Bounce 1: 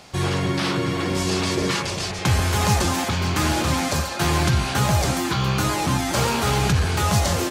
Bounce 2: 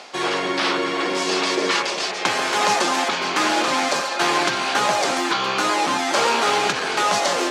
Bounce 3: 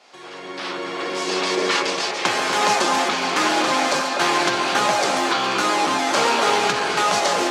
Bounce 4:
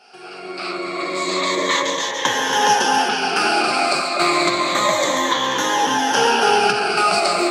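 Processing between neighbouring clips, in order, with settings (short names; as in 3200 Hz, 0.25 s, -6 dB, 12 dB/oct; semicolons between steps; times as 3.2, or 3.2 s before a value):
Bessel high-pass 430 Hz, order 4; reverse; upward compressor, threshold -29 dBFS; reverse; air absorption 70 m; gain +6 dB
opening faded in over 1.71 s; upward compressor, threshold -37 dBFS; on a send: echo with dull and thin repeats by turns 0.243 s, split 1200 Hz, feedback 52%, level -6 dB
moving spectral ripple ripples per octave 1.1, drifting -0.3 Hz, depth 15 dB; gain -1 dB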